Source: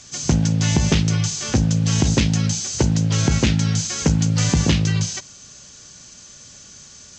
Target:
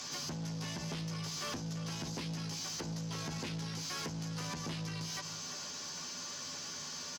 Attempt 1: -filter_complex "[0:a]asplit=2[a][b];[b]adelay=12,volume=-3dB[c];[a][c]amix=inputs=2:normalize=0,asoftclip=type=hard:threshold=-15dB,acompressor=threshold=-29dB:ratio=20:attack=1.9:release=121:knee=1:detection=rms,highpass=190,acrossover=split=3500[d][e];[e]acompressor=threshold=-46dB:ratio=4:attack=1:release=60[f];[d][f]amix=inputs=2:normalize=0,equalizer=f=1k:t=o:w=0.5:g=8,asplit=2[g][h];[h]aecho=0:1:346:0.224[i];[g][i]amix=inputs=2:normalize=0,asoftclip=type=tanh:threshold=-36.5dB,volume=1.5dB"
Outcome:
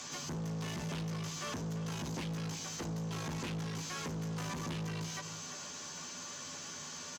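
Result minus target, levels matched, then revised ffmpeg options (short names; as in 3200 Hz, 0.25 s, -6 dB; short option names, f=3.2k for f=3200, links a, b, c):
hard clip: distortion +28 dB; 4000 Hz band -3.5 dB
-filter_complex "[0:a]asplit=2[a][b];[b]adelay=12,volume=-3dB[c];[a][c]amix=inputs=2:normalize=0,asoftclip=type=hard:threshold=-5dB,acompressor=threshold=-29dB:ratio=20:attack=1.9:release=121:knee=1:detection=rms,highpass=190,equalizer=f=5k:t=o:w=0.66:g=9.5,acrossover=split=3500[d][e];[e]acompressor=threshold=-46dB:ratio=4:attack=1:release=60[f];[d][f]amix=inputs=2:normalize=0,equalizer=f=1k:t=o:w=0.5:g=8,asplit=2[g][h];[h]aecho=0:1:346:0.224[i];[g][i]amix=inputs=2:normalize=0,asoftclip=type=tanh:threshold=-36.5dB,volume=1.5dB"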